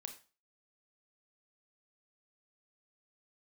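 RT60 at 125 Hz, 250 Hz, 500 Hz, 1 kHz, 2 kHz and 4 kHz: 0.35, 0.35, 0.35, 0.35, 0.30, 0.35 seconds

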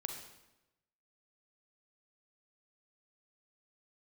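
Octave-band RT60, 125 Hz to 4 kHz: 1.1, 1.0, 1.0, 0.95, 0.90, 0.80 seconds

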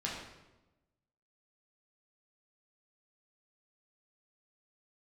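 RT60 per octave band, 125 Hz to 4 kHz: 1.3, 1.3, 1.1, 0.95, 0.85, 0.75 seconds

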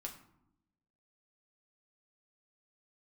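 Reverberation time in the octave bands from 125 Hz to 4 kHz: 1.2, 1.2, 0.85, 0.80, 0.55, 0.40 seconds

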